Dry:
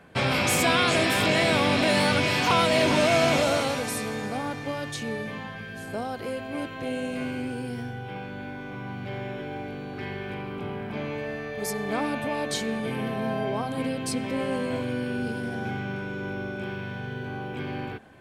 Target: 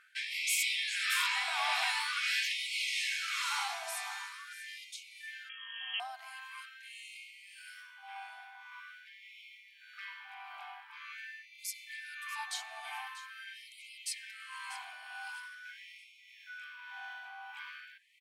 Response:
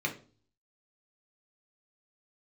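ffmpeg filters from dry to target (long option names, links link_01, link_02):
-filter_complex "[0:a]tremolo=f=1.7:d=0.45,aecho=1:1:639|1278|1917:0.188|0.0527|0.0148,asettb=1/sr,asplit=3[link_01][link_02][link_03];[link_01]atrim=end=5.494[link_04];[link_02]atrim=start=5.49:end=6,asetpts=PTS-STARTPTS,afade=type=in:duration=0.004:curve=qsin,afade=type=out:start_time=0.506:duration=0.004:curve=qsin,lowpass=frequency=2900:width_type=q:width=0.5098,lowpass=frequency=2900:width_type=q:width=0.6013,lowpass=frequency=2900:width_type=q:width=0.9,lowpass=frequency=2900:width_type=q:width=2.563,afreqshift=-3400[link_05];[link_03]atrim=start=5.996[link_06];[link_04][link_05]acrossfade=duration=0.004:curve1=hsin:curve2=qsin[link_07];[link_07][link_06]acrossfade=duration=0.004:curve1=qsin:curve2=hsin,afftfilt=real='re*gte(b*sr/1024,640*pow(2000/640,0.5+0.5*sin(2*PI*0.45*pts/sr)))':imag='im*gte(b*sr/1024,640*pow(2000/640,0.5+0.5*sin(2*PI*0.45*pts/sr)))':win_size=1024:overlap=0.75,volume=-4.5dB"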